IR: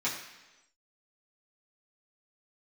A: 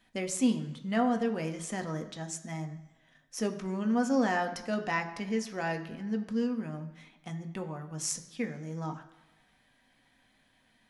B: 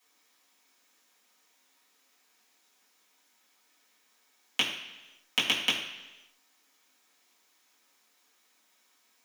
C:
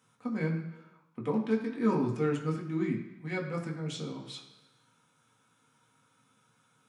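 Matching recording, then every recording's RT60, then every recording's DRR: B; 1.1, 1.1, 1.1 seconds; 5.0, −9.0, −2.0 decibels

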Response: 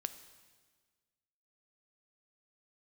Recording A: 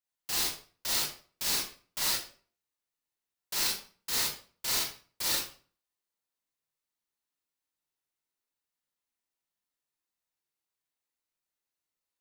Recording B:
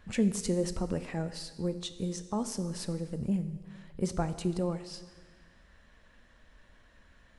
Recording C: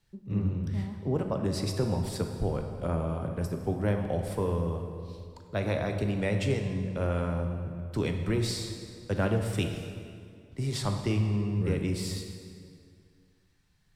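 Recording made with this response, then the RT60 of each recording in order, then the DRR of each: B; 0.45, 1.5, 2.2 seconds; −5.0, 10.5, 4.0 decibels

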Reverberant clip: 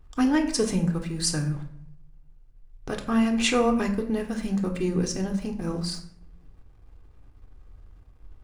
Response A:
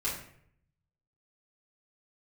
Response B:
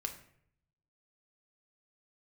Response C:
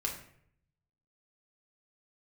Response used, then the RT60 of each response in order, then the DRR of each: B; 0.65, 0.65, 0.65 seconds; −10.5, 3.5, −1.5 decibels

